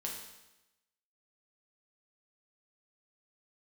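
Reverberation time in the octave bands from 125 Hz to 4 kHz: 0.95, 1.0, 0.95, 1.0, 0.95, 0.95 s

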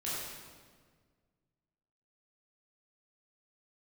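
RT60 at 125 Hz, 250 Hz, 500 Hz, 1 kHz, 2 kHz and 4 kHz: 2.3, 2.1, 1.8, 1.5, 1.4, 1.2 s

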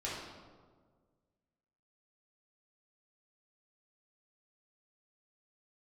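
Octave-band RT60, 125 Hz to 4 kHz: 2.1, 1.9, 1.8, 1.4, 1.0, 0.90 s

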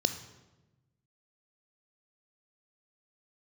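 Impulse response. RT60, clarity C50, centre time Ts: 1.1 s, 11.0 dB, 12 ms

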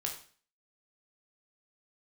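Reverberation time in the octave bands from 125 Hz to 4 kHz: 0.50, 0.45, 0.45, 0.45, 0.45, 0.45 s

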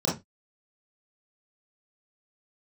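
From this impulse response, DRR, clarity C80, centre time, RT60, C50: -6.0 dB, 17.5 dB, 33 ms, 0.20 s, 7.0 dB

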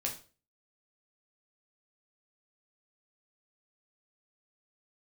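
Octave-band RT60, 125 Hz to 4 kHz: 0.45, 0.45, 0.40, 0.35, 0.35, 0.35 s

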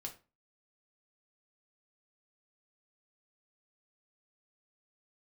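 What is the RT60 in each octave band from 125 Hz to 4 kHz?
0.40, 0.40, 0.30, 0.30, 0.30, 0.25 s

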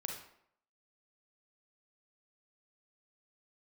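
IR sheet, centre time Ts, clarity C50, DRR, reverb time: 35 ms, 3.5 dB, 1.5 dB, 0.70 s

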